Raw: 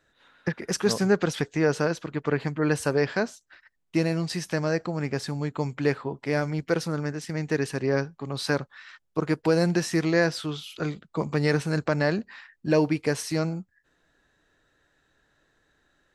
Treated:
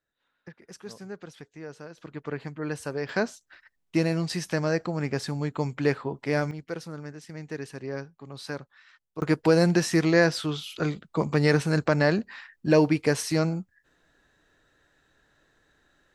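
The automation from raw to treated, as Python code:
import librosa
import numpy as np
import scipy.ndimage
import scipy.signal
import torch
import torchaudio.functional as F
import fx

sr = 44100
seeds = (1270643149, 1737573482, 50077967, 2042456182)

y = fx.gain(x, sr, db=fx.steps((0.0, -18.0), (1.98, -8.0), (3.09, 0.0), (6.51, -9.5), (9.22, 2.0)))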